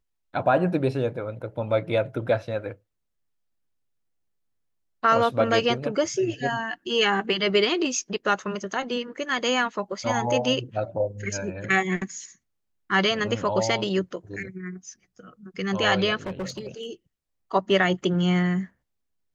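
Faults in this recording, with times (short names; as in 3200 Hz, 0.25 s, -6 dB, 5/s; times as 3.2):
16.26–16.87 clipped -27 dBFS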